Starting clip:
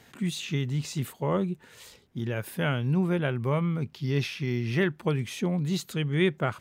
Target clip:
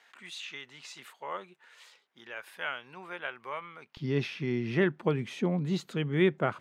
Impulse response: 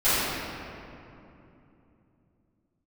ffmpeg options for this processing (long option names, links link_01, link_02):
-af "asetnsamples=nb_out_samples=441:pad=0,asendcmd='3.97 highpass f 180',highpass=1100,aemphasis=mode=reproduction:type=75fm"